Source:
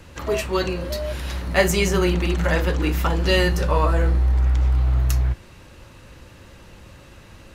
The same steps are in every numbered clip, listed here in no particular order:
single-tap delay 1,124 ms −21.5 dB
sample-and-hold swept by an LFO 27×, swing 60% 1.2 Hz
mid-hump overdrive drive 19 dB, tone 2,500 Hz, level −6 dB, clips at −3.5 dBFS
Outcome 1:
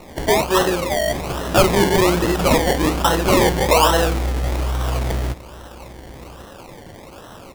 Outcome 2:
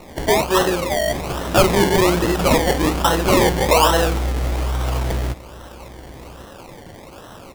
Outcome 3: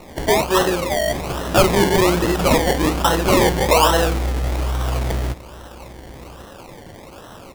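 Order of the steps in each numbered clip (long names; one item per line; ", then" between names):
single-tap delay, then mid-hump overdrive, then sample-and-hold swept by an LFO
mid-hump overdrive, then sample-and-hold swept by an LFO, then single-tap delay
mid-hump overdrive, then single-tap delay, then sample-and-hold swept by an LFO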